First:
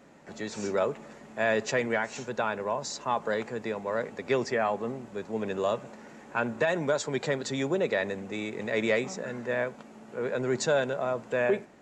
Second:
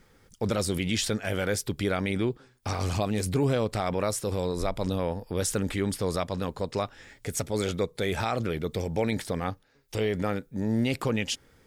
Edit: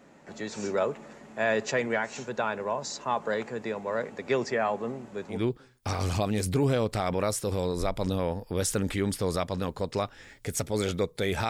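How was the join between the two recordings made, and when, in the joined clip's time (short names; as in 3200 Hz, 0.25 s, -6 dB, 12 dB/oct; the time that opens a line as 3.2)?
first
5.36 switch to second from 2.16 s, crossfade 0.16 s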